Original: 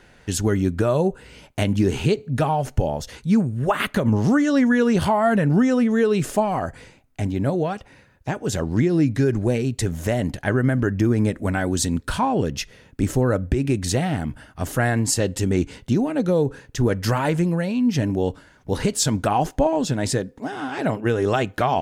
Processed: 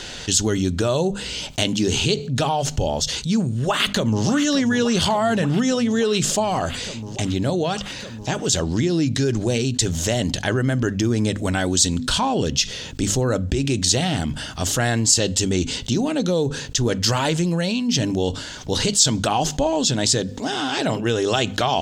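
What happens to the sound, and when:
0:03.52–0:04.25: delay throw 580 ms, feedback 70%, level −11.5 dB
whole clip: flat-topped bell 4,800 Hz +13.5 dB; mains-hum notches 50/100/150/200/250 Hz; envelope flattener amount 50%; level −7 dB

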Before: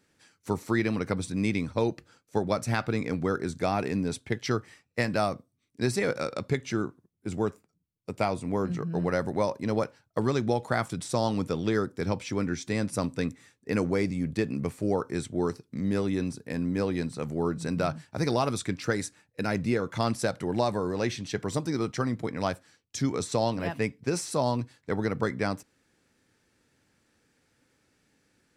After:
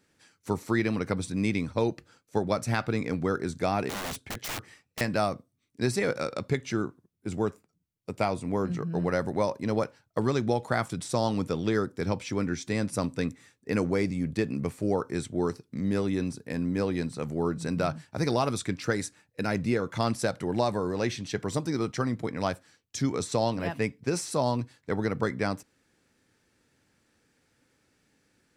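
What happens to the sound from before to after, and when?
0:03.89–0:05.01: wrap-around overflow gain 29 dB

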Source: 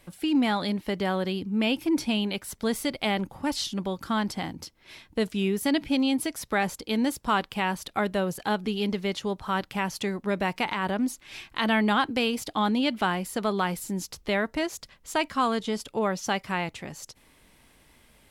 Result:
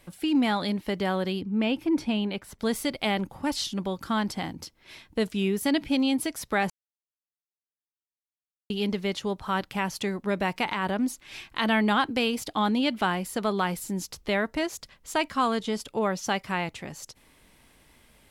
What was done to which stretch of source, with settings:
0:01.41–0:02.59: high-shelf EQ 3,900 Hz −11.5 dB
0:06.70–0:08.70: silence

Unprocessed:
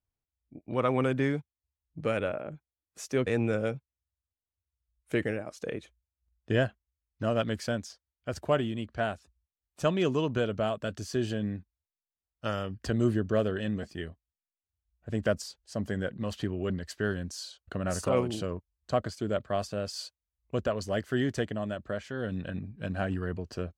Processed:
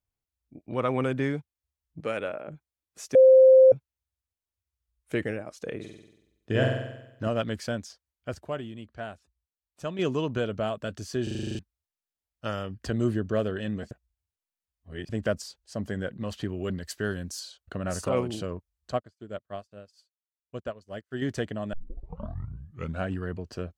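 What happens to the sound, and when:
0:02.00–0:02.48: high-pass filter 300 Hz 6 dB per octave
0:03.15–0:03.72: beep over 523 Hz −11 dBFS
0:05.75–0:07.28: flutter between parallel walls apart 8 metres, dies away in 0.89 s
0:08.35–0:09.99: clip gain −7 dB
0:11.23: stutter in place 0.04 s, 9 plays
0:13.91–0:15.09: reverse
0:16.48–0:17.39: high-shelf EQ 5,500 Hz → 8,600 Hz +11 dB
0:18.92–0:21.22: expander for the loud parts 2.5 to 1, over −47 dBFS
0:21.73: tape start 1.33 s

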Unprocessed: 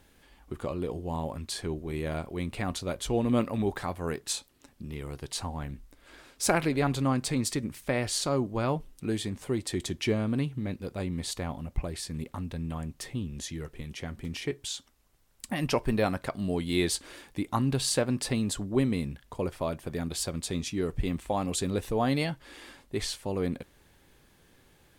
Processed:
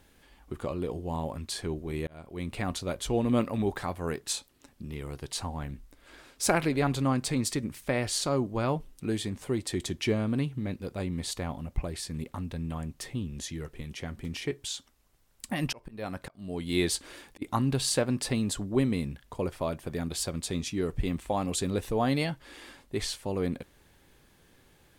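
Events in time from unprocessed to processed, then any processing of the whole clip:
0:02.07–0:02.53: fade in
0:15.65–0:17.42: volume swells 491 ms

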